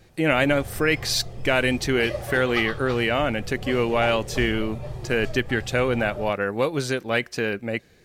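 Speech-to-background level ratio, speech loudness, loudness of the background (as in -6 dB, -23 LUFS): 12.0 dB, -23.5 LUFS, -35.5 LUFS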